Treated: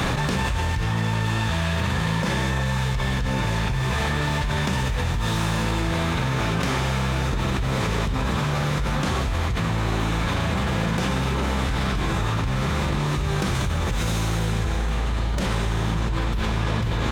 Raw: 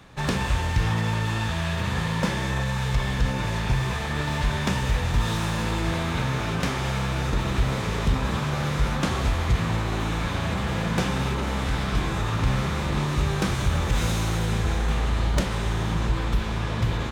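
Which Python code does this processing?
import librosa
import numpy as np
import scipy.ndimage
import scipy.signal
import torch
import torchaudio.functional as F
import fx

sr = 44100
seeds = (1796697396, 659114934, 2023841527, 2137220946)

y = fx.env_flatten(x, sr, amount_pct=100)
y = y * 10.0 ** (-6.5 / 20.0)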